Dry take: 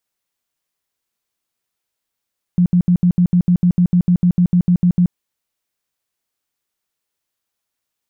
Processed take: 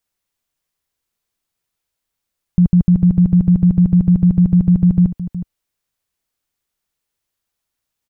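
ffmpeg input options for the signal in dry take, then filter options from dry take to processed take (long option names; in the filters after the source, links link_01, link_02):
-f lavfi -i "aevalsrc='0.355*sin(2*PI*177*mod(t,0.15))*lt(mod(t,0.15),14/177)':duration=2.55:sample_rate=44100"
-af "lowshelf=frequency=98:gain=11,aecho=1:1:366:0.224"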